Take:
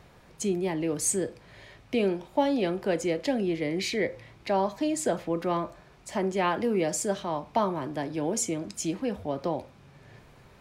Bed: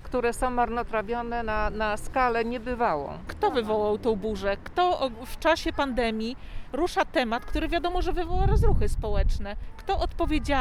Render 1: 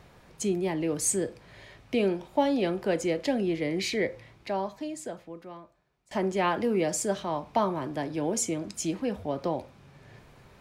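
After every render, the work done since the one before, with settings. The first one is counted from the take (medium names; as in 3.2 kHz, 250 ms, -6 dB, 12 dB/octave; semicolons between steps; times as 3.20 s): 4.01–6.11 s: fade out quadratic, to -21.5 dB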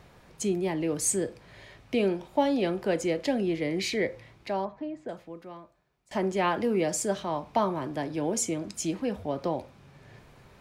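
4.65–5.09 s: low-pass 1.7 kHz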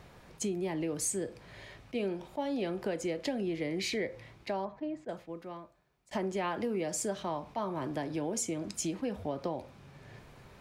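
compression 4:1, threshold -31 dBFS, peak gain reduction 11 dB; attacks held to a fixed rise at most 590 dB/s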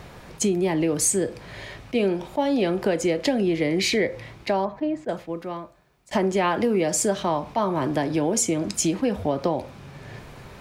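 trim +11.5 dB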